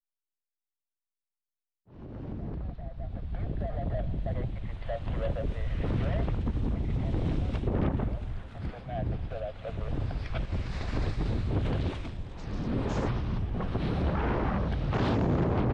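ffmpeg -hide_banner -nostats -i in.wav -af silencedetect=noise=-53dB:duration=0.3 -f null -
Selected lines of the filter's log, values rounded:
silence_start: 0.00
silence_end: 1.88 | silence_duration: 1.88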